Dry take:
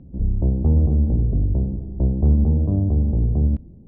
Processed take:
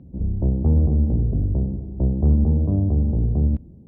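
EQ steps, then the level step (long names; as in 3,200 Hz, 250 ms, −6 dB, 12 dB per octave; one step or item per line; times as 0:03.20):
high-pass filter 51 Hz
0.0 dB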